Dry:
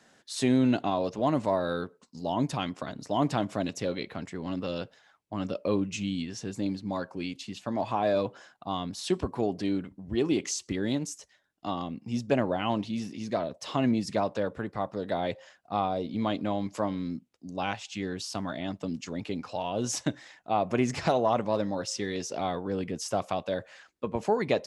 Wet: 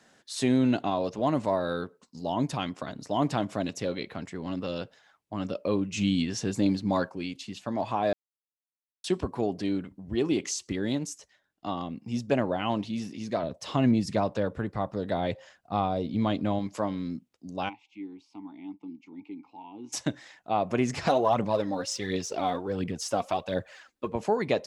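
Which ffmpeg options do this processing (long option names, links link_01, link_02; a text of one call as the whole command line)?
ffmpeg -i in.wav -filter_complex "[0:a]asplit=3[link_01][link_02][link_03];[link_01]afade=type=out:start_time=5.96:duration=0.02[link_04];[link_02]acontrast=54,afade=type=in:start_time=5.96:duration=0.02,afade=type=out:start_time=7.08:duration=0.02[link_05];[link_03]afade=type=in:start_time=7.08:duration=0.02[link_06];[link_04][link_05][link_06]amix=inputs=3:normalize=0,asettb=1/sr,asplit=3[link_07][link_08][link_09];[link_07]atrim=end=11.134[link_10];[link_08]atrim=start=11.13:end=11.91,asetpts=PTS-STARTPTS,afade=type=in:duration=0.004:curve=qsin,afade=type=out:start_time=0.776:duration=0.004:curve=qsin,highshelf=frequency=5400:gain=-4.5[link_11];[link_09]atrim=start=11.906[link_12];[link_10][link_11]acrossfade=duration=0.004:curve1=hsin:curve2=qsin[link_13];[link_13][link_12]acrossfade=duration=0.004:curve1=qsin:curve2=hsin,asettb=1/sr,asplit=3[link_14][link_15][link_16];[link_14]atrim=end=13.434[link_17];[link_15]atrim=start=13.43:end=16.59,asetpts=PTS-STARTPTS,afade=type=in:duration=0.004:curve=qsin,afade=type=out:start_time=3.156:duration=0.004:curve=qsin,lowshelf=frequency=150:gain=9.5[link_18];[link_16]atrim=start=16.586[link_19];[link_17][link_18]acrossfade=duration=0.004:curve1=hsin:curve2=qsin[link_20];[link_20][link_19]acrossfade=duration=0.004:curve1=qsin:curve2=hsin,asplit=3[link_21][link_22][link_23];[link_21]afade=type=out:start_time=17.68:duration=0.02[link_24];[link_22]asplit=3[link_25][link_26][link_27];[link_25]bandpass=frequency=300:width_type=q:width=8,volume=0dB[link_28];[link_26]bandpass=frequency=870:width_type=q:width=8,volume=-6dB[link_29];[link_27]bandpass=frequency=2240:width_type=q:width=8,volume=-9dB[link_30];[link_28][link_29][link_30]amix=inputs=3:normalize=0,afade=type=in:start_time=17.68:duration=0.02,afade=type=out:start_time=19.92:duration=0.02[link_31];[link_23]afade=type=in:start_time=19.92:duration=0.02[link_32];[link_24][link_31][link_32]amix=inputs=3:normalize=0,asplit=3[link_33][link_34][link_35];[link_33]afade=type=out:start_time=21.05:duration=0.02[link_36];[link_34]aphaser=in_gain=1:out_gain=1:delay=4.4:decay=0.51:speed=1.4:type=triangular,afade=type=in:start_time=21.05:duration=0.02,afade=type=out:start_time=24.11:duration=0.02[link_37];[link_35]afade=type=in:start_time=24.11:duration=0.02[link_38];[link_36][link_37][link_38]amix=inputs=3:normalize=0,asplit=3[link_39][link_40][link_41];[link_39]atrim=end=8.13,asetpts=PTS-STARTPTS,afade=type=out:start_time=8.126:duration=0.004:curve=hsin[link_42];[link_40]atrim=start=8.13:end=9.04,asetpts=PTS-STARTPTS,volume=0[link_43];[link_41]atrim=start=9.04,asetpts=PTS-STARTPTS,afade=type=in:duration=0.004:curve=hsin[link_44];[link_42][link_43][link_44]concat=n=3:v=0:a=1" out.wav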